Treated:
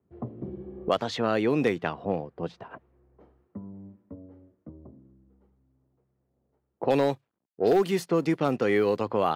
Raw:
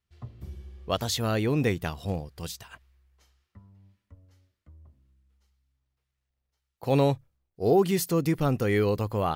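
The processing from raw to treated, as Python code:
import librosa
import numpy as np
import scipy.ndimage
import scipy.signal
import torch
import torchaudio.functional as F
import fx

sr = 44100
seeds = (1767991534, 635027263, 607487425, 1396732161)

y = fx.law_mismatch(x, sr, coded='A', at=(6.95, 9.01))
y = scipy.signal.sosfilt(scipy.signal.butter(2, 240.0, 'highpass', fs=sr, output='sos'), y)
y = fx.env_lowpass(y, sr, base_hz=400.0, full_db=-23.0)
y = fx.high_shelf(y, sr, hz=4400.0, db=-12.0)
y = np.clip(y, -10.0 ** (-16.0 / 20.0), 10.0 ** (-16.0 / 20.0))
y = fx.band_squash(y, sr, depth_pct=70)
y = y * 10.0 ** (3.5 / 20.0)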